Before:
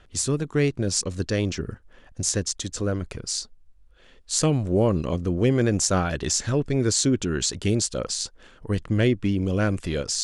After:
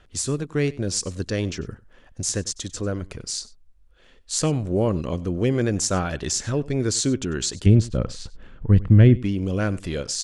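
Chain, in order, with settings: 7.66–9.17 tone controls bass +13 dB, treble -14 dB; echo 96 ms -20.5 dB; gain -1 dB

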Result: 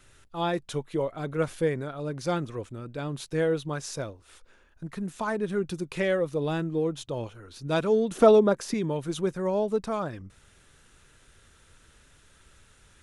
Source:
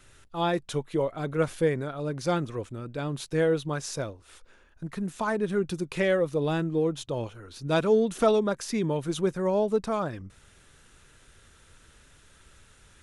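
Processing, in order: 8.11–8.74 bell 400 Hz +7.5 dB 3 oct; gain -1.5 dB

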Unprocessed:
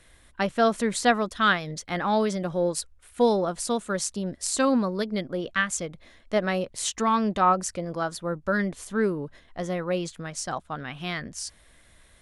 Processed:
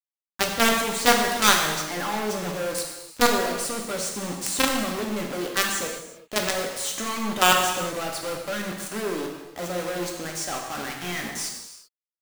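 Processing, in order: HPF 190 Hz 24 dB/oct; companded quantiser 2-bit; non-linear reverb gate 0.41 s falling, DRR 0.5 dB; gain -4.5 dB

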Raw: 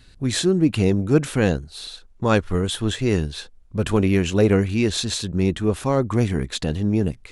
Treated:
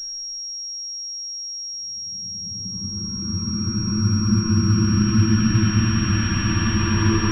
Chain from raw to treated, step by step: spectral delete 1.92–3.98, 350–920 Hz; gate -37 dBFS, range -36 dB; in parallel at 0 dB: compressor, threshold -27 dBFS, peak gain reduction 15 dB; on the sum: Paulstretch 21×, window 0.25 s, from 3.55; pulse-width modulation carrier 5600 Hz; gain +2.5 dB

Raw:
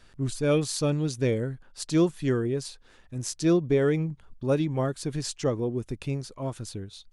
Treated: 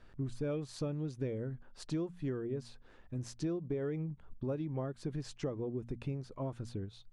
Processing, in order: LPF 1200 Hz 6 dB/oct; compressor 6:1, threshold -33 dBFS, peak gain reduction 14.5 dB; de-hum 59.04 Hz, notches 4; gain -1 dB

